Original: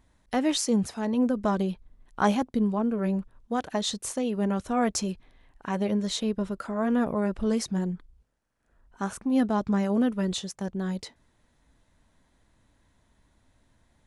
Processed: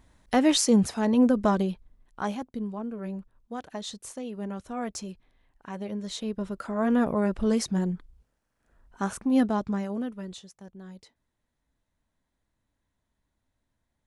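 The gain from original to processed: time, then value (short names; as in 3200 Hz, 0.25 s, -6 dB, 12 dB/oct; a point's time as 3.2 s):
1.38 s +4 dB
2.29 s -8 dB
5.88 s -8 dB
6.87 s +1.5 dB
9.39 s +1.5 dB
9.93 s -7 dB
10.55 s -14 dB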